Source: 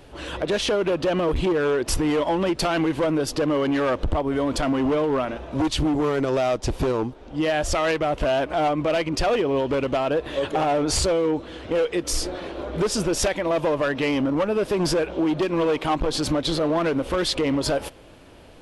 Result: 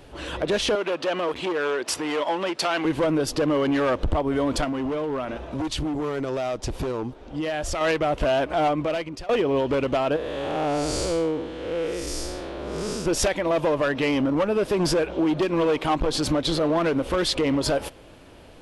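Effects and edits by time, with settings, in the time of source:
0:00.75–0:02.85: meter weighting curve A
0:04.64–0:07.81: downward compressor 2.5 to 1, threshold −26 dBFS
0:08.70–0:09.29: fade out, to −21.5 dB
0:10.16–0:13.06: spectrum smeared in time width 248 ms

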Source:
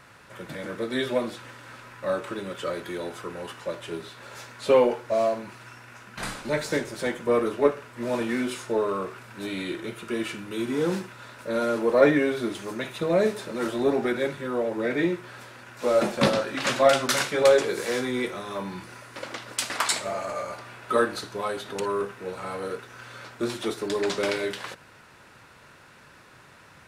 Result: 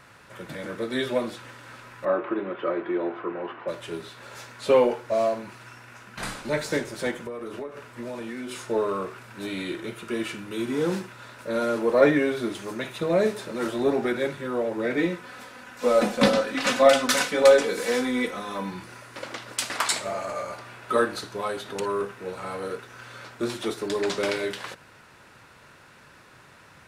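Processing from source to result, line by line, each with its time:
0:02.05–0:03.68: loudspeaker in its box 180–2,600 Hz, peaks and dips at 340 Hz +10 dB, 700 Hz +7 dB, 1,100 Hz +5 dB
0:07.11–0:08.70: downward compressor 20 to 1, threshold −30 dBFS
0:14.97–0:18.71: comb filter 4 ms

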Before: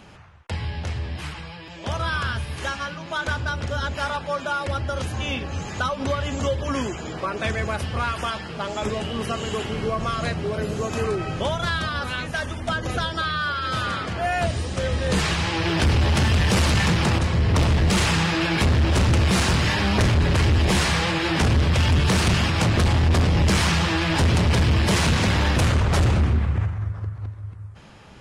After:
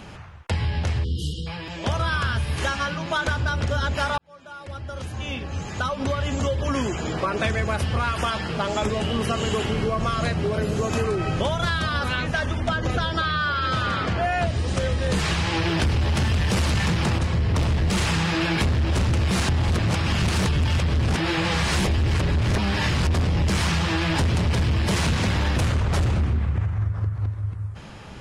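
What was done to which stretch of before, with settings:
0:01.04–0:01.47: time-frequency box erased 520–2,800 Hz
0:04.18–0:07.45: fade in
0:12.08–0:14.68: high-frequency loss of the air 55 metres
0:19.49–0:23.07: reverse
whole clip: low-shelf EQ 170 Hz +3 dB; downward compressor, threshold −25 dBFS; level +5 dB

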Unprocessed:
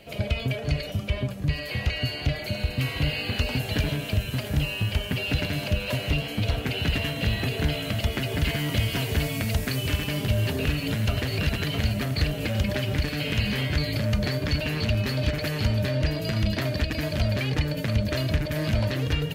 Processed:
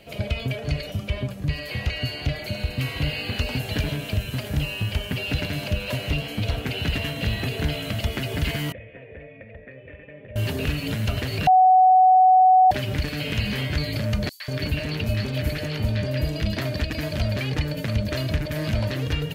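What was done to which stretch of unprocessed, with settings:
0:08.72–0:10.36: formant resonators in series e
0:11.47–0:12.71: beep over 746 Hz −11 dBFS
0:14.29–0:16.42: three-band delay without the direct sound highs, mids, lows 110/190 ms, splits 1,100/5,600 Hz

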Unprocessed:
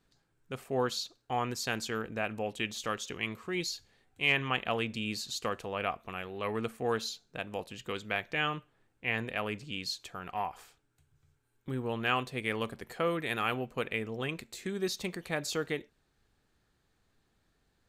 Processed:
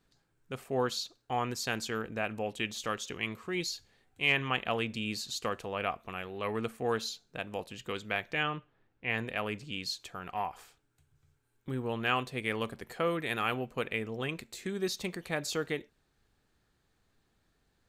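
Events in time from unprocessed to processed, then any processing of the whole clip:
0:08.43–0:09.10: high-frequency loss of the air 140 metres

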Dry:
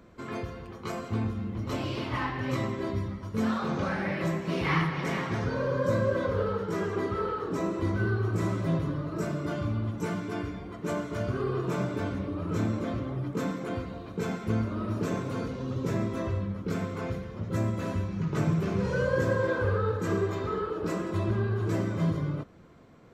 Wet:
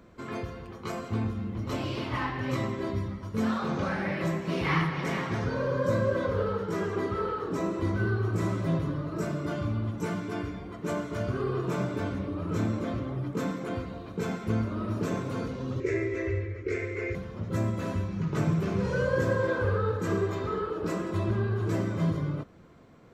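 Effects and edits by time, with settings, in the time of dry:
0:15.80–0:17.15: drawn EQ curve 100 Hz 0 dB, 200 Hz −26 dB, 370 Hz +10 dB, 850 Hz −15 dB, 1,400 Hz −5 dB, 2,100 Hz +14 dB, 3,200 Hz −8 dB, 6,800 Hz −2 dB, 12,000 Hz −21 dB

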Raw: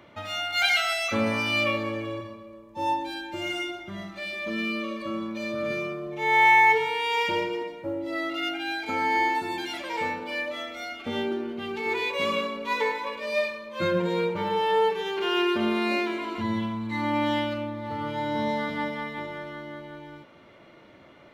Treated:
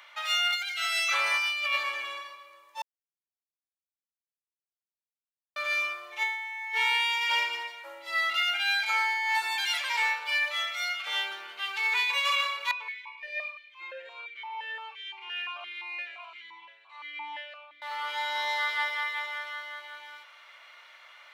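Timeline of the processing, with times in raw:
0:02.82–0:05.56: silence
0:12.71–0:17.82: formant filter that steps through the vowels 5.8 Hz
whole clip: Bessel high-pass filter 1,500 Hz, order 4; compressor whose output falls as the input rises −33 dBFS, ratio −1; level +5 dB

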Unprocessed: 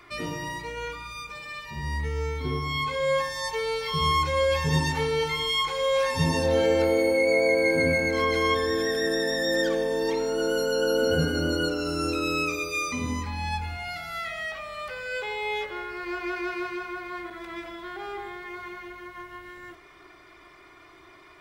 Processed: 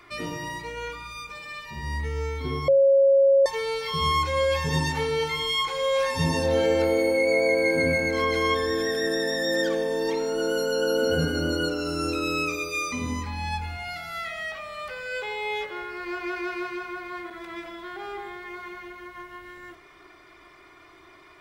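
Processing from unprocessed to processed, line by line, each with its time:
0:02.68–0:03.46: beep over 548 Hz −14 dBFS
whole clip: mains-hum notches 50/100/150 Hz

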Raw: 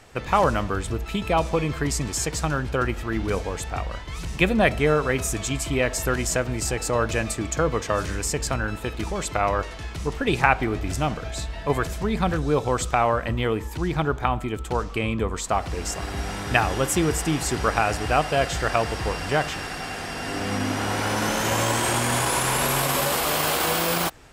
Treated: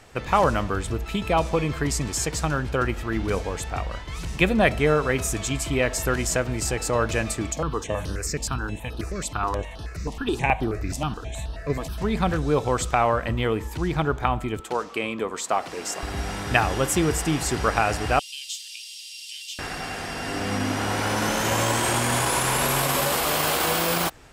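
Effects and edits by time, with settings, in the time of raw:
0:07.52–0:11.98: step-sequenced phaser 9.4 Hz 390–7,300 Hz
0:14.60–0:16.03: high-pass filter 270 Hz
0:18.19–0:19.59: Butterworth high-pass 2,900 Hz 48 dB per octave

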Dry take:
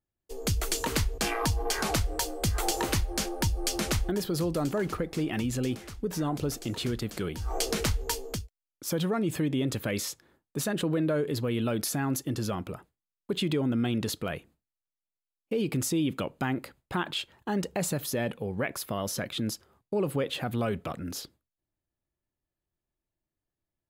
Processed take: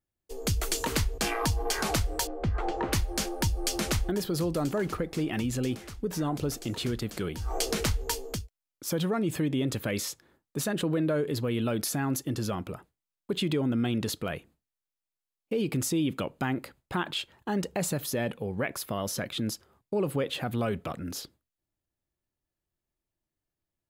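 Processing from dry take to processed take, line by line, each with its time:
0:02.27–0:02.93: low-pass filter 1,700 Hz

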